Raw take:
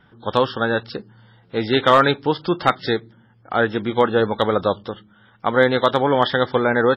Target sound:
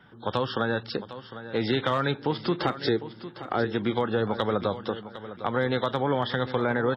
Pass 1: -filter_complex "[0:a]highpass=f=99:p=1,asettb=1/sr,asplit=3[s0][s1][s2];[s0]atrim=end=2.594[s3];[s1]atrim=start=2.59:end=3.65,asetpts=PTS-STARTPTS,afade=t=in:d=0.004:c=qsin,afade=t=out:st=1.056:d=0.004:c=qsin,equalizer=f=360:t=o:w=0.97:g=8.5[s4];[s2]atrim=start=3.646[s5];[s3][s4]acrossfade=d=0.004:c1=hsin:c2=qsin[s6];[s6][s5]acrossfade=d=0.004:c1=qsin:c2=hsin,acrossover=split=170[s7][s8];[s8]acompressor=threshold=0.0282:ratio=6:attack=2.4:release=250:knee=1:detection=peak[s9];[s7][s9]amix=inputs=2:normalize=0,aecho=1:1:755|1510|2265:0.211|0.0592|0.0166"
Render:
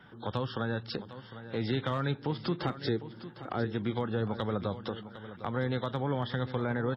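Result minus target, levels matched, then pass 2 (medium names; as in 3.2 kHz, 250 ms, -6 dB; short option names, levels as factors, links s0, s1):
compression: peak gain reduction +8.5 dB
-filter_complex "[0:a]highpass=f=99:p=1,asettb=1/sr,asplit=3[s0][s1][s2];[s0]atrim=end=2.594[s3];[s1]atrim=start=2.59:end=3.65,asetpts=PTS-STARTPTS,afade=t=in:d=0.004:c=qsin,afade=t=out:st=1.056:d=0.004:c=qsin,equalizer=f=360:t=o:w=0.97:g=8.5[s4];[s2]atrim=start=3.646[s5];[s3][s4]acrossfade=d=0.004:c1=hsin:c2=qsin[s6];[s6][s5]acrossfade=d=0.004:c1=qsin:c2=hsin,acrossover=split=170[s7][s8];[s8]acompressor=threshold=0.0891:ratio=6:attack=2.4:release=250:knee=1:detection=peak[s9];[s7][s9]amix=inputs=2:normalize=0,aecho=1:1:755|1510|2265:0.211|0.0592|0.0166"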